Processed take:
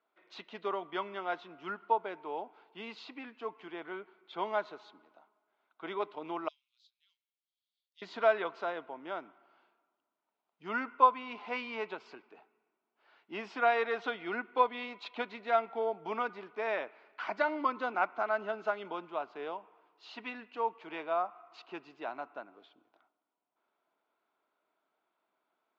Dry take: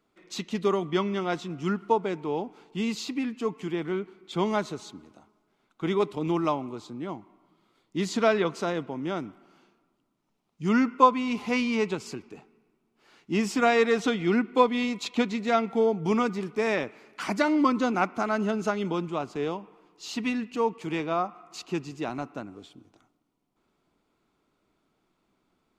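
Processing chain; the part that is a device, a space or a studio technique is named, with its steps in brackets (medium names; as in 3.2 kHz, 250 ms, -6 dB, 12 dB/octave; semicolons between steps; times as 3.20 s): 6.48–8.02 s: inverse Chebyshev high-pass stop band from 670 Hz, stop band 80 dB; phone earpiece (cabinet simulation 460–3900 Hz, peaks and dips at 650 Hz +7 dB, 940 Hz +5 dB, 1.5 kHz +6 dB); trim -8.5 dB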